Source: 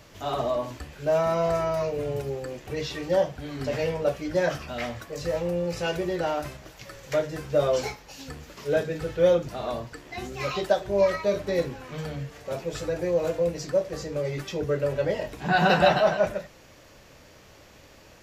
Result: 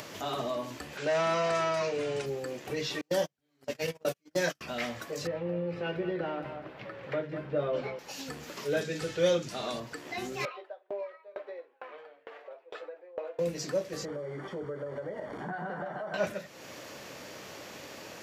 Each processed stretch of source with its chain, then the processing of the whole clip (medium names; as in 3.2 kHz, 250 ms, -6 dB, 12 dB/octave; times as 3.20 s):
0.97–2.26 s: low-pass 9.2 kHz 24 dB/octave + overdrive pedal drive 13 dB, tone 5.6 kHz, clips at -14 dBFS
3.01–4.61 s: gate -27 dBFS, range -43 dB + treble shelf 5.2 kHz +11 dB
5.27–7.99 s: high-pass 41 Hz + distance through air 470 m + delay 197 ms -11.5 dB
8.81–9.80 s: low-pass 7.6 kHz + treble shelf 4.1 kHz +11 dB
10.45–13.39 s: high-pass 460 Hz 24 dB/octave + distance through air 500 m + sawtooth tremolo in dB decaying 2.2 Hz, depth 37 dB
14.05–16.14 s: one-bit delta coder 64 kbps, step -32 dBFS + compression 5:1, threshold -33 dBFS + Savitzky-Golay filter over 41 samples
whole clip: high-pass 180 Hz 12 dB/octave; dynamic bell 700 Hz, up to -8 dB, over -36 dBFS, Q 0.81; upward compressor, threshold -36 dBFS